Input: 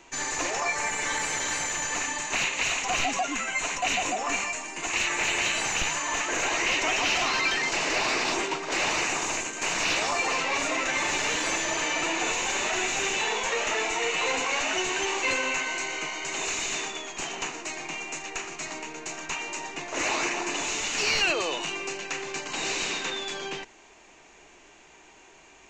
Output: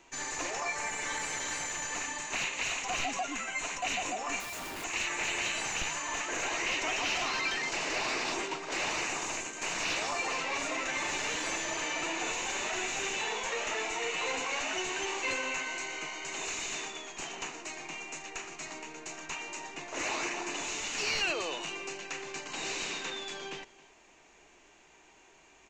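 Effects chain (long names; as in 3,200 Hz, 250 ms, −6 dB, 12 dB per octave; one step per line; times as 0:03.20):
0:04.40–0:04.84: comparator with hysteresis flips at −40 dBFS
single-tap delay 272 ms −21 dB
level −6.5 dB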